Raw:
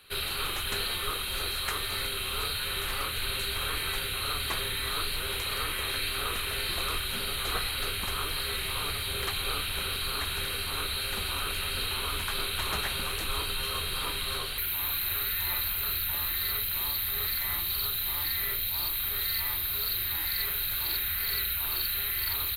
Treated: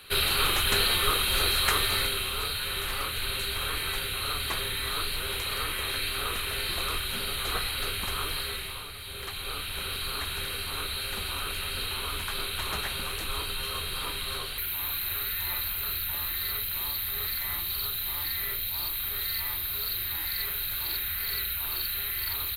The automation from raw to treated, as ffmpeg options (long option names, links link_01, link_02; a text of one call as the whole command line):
ffmpeg -i in.wav -af "volume=15.5dB,afade=type=out:start_time=1.79:duration=0.56:silence=0.473151,afade=type=out:start_time=8.33:duration=0.56:silence=0.316228,afade=type=in:start_time=8.89:duration=1.09:silence=0.375837" out.wav